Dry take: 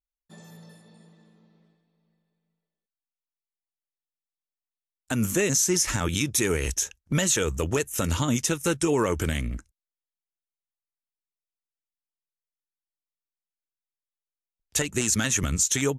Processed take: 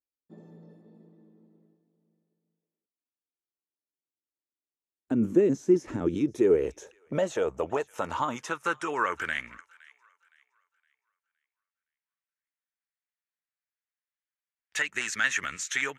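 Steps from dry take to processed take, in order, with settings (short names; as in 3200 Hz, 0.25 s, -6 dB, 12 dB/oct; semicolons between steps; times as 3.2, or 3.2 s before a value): band-pass sweep 320 Hz -> 1800 Hz, 5.94–9.52; on a send: thin delay 0.515 s, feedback 33%, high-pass 1400 Hz, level -22 dB; on the sum: gain +7 dB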